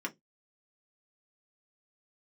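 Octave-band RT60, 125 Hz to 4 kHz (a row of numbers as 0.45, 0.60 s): 0.25, 0.20, 0.20, 0.10, 0.10, 0.15 s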